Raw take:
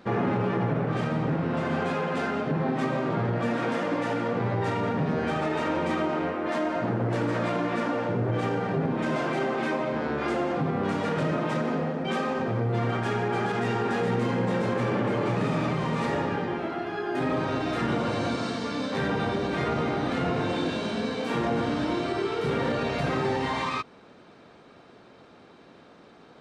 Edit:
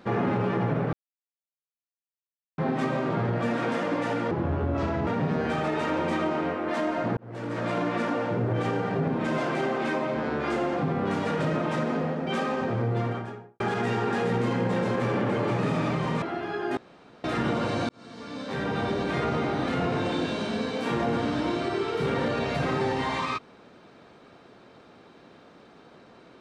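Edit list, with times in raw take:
0.93–2.58 mute
4.31–4.85 speed 71%
6.95–7.55 fade in
12.64–13.38 studio fade out
16–16.66 cut
17.21–17.68 room tone
18.33–19.33 fade in

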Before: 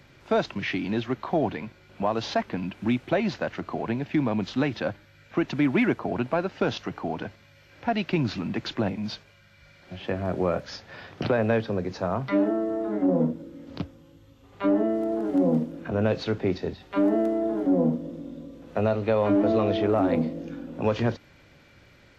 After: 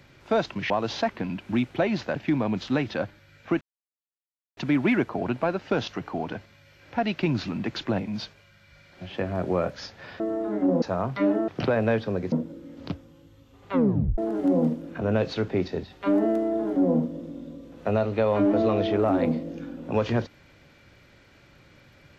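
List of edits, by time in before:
0.7–2.03 cut
3.49–4.02 cut
5.47 insert silence 0.96 s
11.1–11.94 swap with 12.6–13.22
14.62 tape stop 0.46 s

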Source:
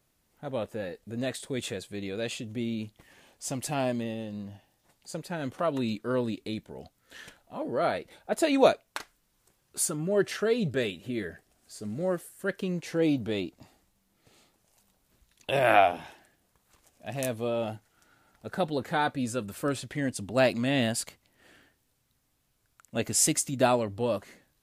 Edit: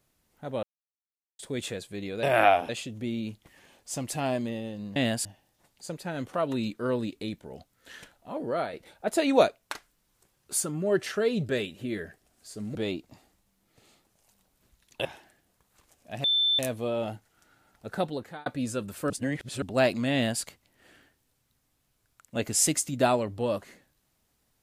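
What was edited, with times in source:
0.63–1.39 mute
7.73–7.98 fade out, to -8 dB
12–13.24 cut
15.54–16 move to 2.23
17.19 add tone 3540 Hz -21 dBFS 0.35 s
18.6–19.06 fade out
19.7–20.22 reverse
20.73–21.02 copy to 4.5

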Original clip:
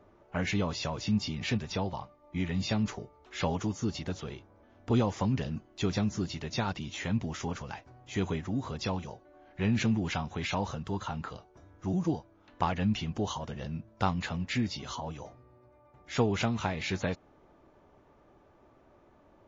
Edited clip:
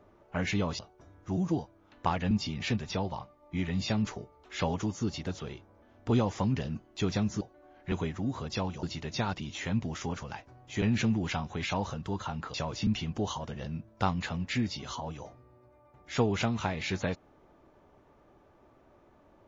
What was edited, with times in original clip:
0.79–1.12 swap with 11.35–12.87
6.22–8.21 swap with 9.12–9.63

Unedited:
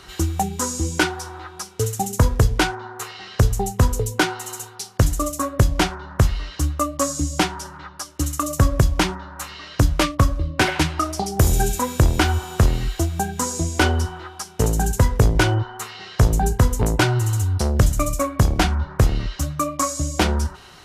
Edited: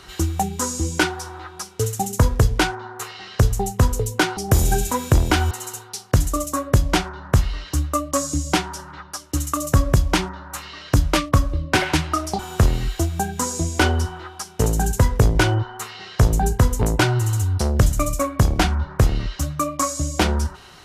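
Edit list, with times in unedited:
11.25–12.39 move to 4.37

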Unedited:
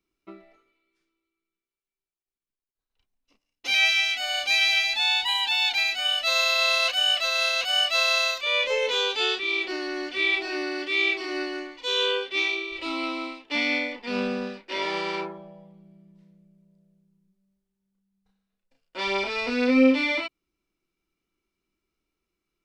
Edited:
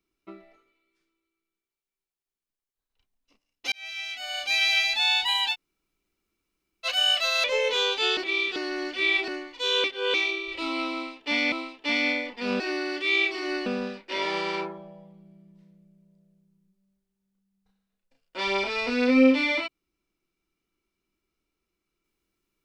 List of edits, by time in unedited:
3.72–4.83 fade in
5.53–6.86 room tone, crossfade 0.06 s
7.44–8.62 cut
9.35–9.74 reverse
10.46–11.52 move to 14.26
12.08–12.38 reverse
13.18–13.76 loop, 2 plays

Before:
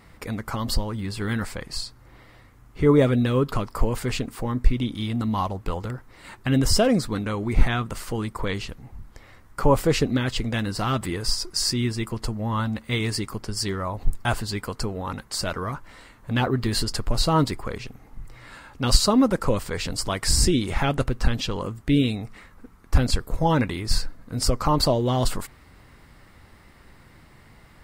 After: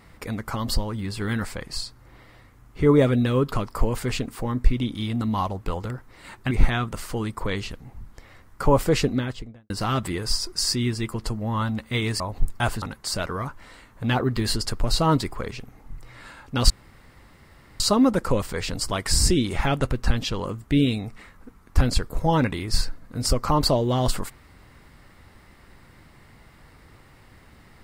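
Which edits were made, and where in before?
6.51–7.49 cut
9.98–10.68 studio fade out
13.18–13.85 cut
14.47–15.09 cut
18.97 insert room tone 1.10 s

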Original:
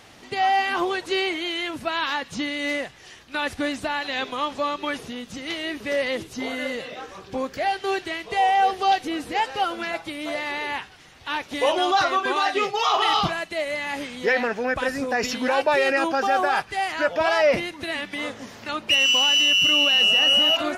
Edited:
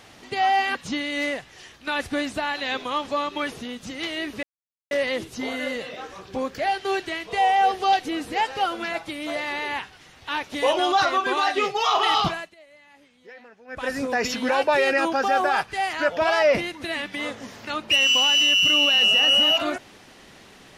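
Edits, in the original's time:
0.75–2.22 cut
5.9 insert silence 0.48 s
13.26–14.94 dip -24 dB, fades 0.28 s

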